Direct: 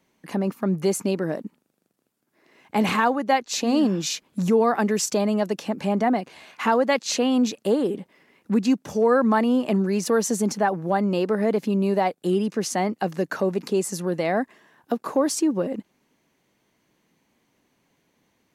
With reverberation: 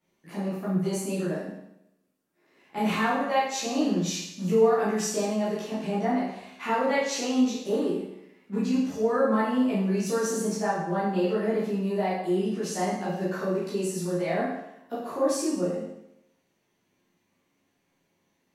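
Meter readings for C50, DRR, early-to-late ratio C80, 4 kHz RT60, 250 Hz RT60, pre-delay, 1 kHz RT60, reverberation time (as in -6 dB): 1.0 dB, -11.0 dB, 4.5 dB, 0.80 s, 0.85 s, 11 ms, 0.80 s, 0.80 s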